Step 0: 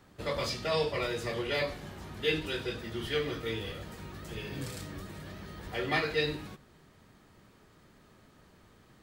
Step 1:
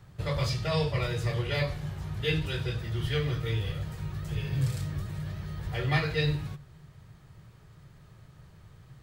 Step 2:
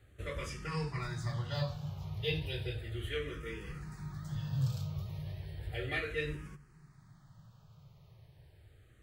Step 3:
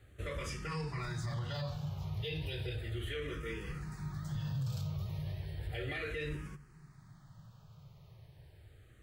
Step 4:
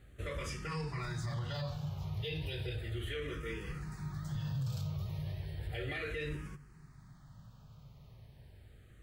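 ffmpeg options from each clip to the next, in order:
ffmpeg -i in.wav -af "lowshelf=frequency=180:width_type=q:width=3:gain=8.5" out.wav
ffmpeg -i in.wav -filter_complex "[0:a]asplit=2[link_01][link_02];[link_02]afreqshift=-0.34[link_03];[link_01][link_03]amix=inputs=2:normalize=1,volume=-4dB" out.wav
ffmpeg -i in.wav -af "alimiter=level_in=8.5dB:limit=-24dB:level=0:latency=1:release=31,volume=-8.5dB,volume=2dB" out.wav
ffmpeg -i in.wav -af "aeval=exprs='val(0)+0.000891*(sin(2*PI*50*n/s)+sin(2*PI*2*50*n/s)/2+sin(2*PI*3*50*n/s)/3+sin(2*PI*4*50*n/s)/4+sin(2*PI*5*50*n/s)/5)':channel_layout=same" out.wav

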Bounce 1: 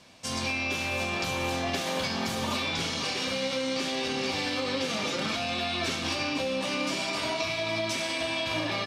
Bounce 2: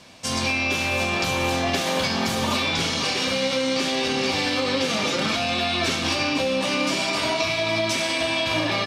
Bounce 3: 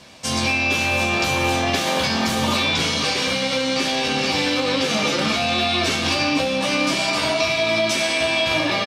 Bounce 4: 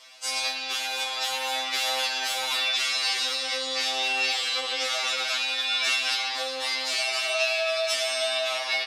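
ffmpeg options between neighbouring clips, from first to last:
ffmpeg -i in.wav -af "acontrast=71" out.wav
ffmpeg -i in.wav -filter_complex "[0:a]asplit=2[link_01][link_02];[link_02]adelay=14,volume=-7dB[link_03];[link_01][link_03]amix=inputs=2:normalize=0,volume=2dB" out.wav
ffmpeg -i in.wav -af "highpass=1200,afftfilt=real='re*2.45*eq(mod(b,6),0)':imag='im*2.45*eq(mod(b,6),0)':win_size=2048:overlap=0.75" out.wav

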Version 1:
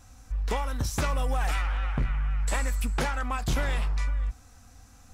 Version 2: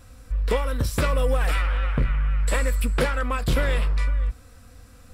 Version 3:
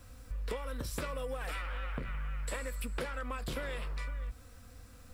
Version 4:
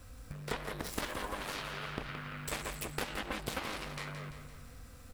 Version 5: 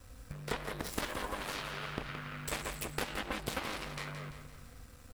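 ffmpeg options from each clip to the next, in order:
ffmpeg -i in.wav -af "equalizer=frequency=500:width_type=o:width=0.33:gain=8,equalizer=frequency=800:width_type=o:width=0.33:gain=-10,equalizer=frequency=6300:width_type=o:width=0.33:gain=-12,volume=5dB" out.wav
ffmpeg -i in.wav -filter_complex "[0:a]acrossover=split=210[link_01][link_02];[link_01]alimiter=level_in=1dB:limit=-24dB:level=0:latency=1:release=45,volume=-1dB[link_03];[link_03][link_02]amix=inputs=2:normalize=0,acrusher=bits=9:mix=0:aa=0.000001,acompressor=threshold=-29dB:ratio=6,volume=-5.5dB" out.wav
ffmpeg -i in.wav -af "aeval=exprs='0.0708*(cos(1*acos(clip(val(0)/0.0708,-1,1)))-cos(1*PI/2))+0.02*(cos(7*acos(clip(val(0)/0.0708,-1,1)))-cos(7*PI/2))':channel_layout=same,aecho=1:1:170|340|510|680|850|1020:0.355|0.185|0.0959|0.0499|0.0259|0.0135,volume=1.5dB" out.wav
ffmpeg -i in.wav -af "aeval=exprs='sgn(val(0))*max(abs(val(0))-0.001,0)':channel_layout=same,volume=1dB" out.wav

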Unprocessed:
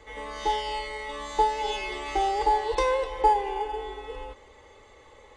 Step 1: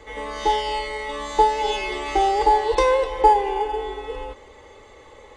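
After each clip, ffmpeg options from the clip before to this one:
ffmpeg -i in.wav -af "equalizer=frequency=340:width=0.67:gain=2.5,volume=5dB" out.wav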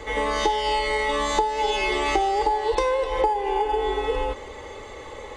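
ffmpeg -i in.wav -af "acompressor=threshold=-27dB:ratio=12,volume=8dB" out.wav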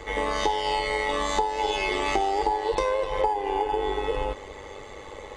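ffmpeg -i in.wav -af "tremolo=f=99:d=0.571" out.wav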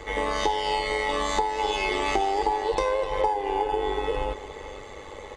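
ffmpeg -i in.wav -af "aecho=1:1:463:0.168" out.wav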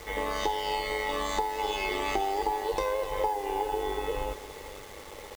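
ffmpeg -i in.wav -af "acrusher=bits=6:mix=0:aa=0.000001,volume=-4.5dB" out.wav

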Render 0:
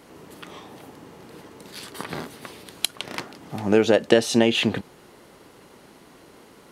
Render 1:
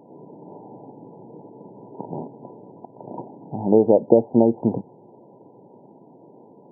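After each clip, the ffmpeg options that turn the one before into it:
ffmpeg -i in.wav -af "afftfilt=real='re*between(b*sr/4096,100,1000)':imag='im*between(b*sr/4096,100,1000)':win_size=4096:overlap=0.75,volume=2.5dB" out.wav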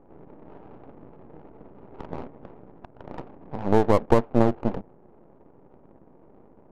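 ffmpeg -i in.wav -af "aeval=exprs='max(val(0),0)':channel_layout=same,adynamicsmooth=sensitivity=6:basefreq=790" out.wav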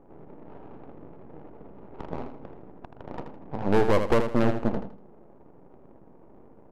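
ffmpeg -i in.wav -af "volume=11.5dB,asoftclip=hard,volume=-11.5dB,aecho=1:1:80|160|240|320:0.398|0.119|0.0358|0.0107" out.wav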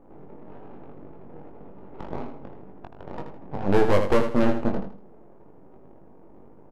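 ffmpeg -i in.wav -filter_complex "[0:a]asplit=2[link_01][link_02];[link_02]adelay=21,volume=-4dB[link_03];[link_01][link_03]amix=inputs=2:normalize=0" out.wav

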